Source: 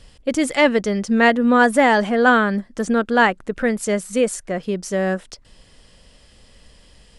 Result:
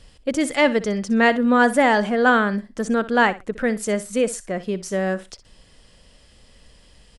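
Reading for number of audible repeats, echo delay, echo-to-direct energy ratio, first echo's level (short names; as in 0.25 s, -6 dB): 2, 62 ms, -16.0 dB, -16.0 dB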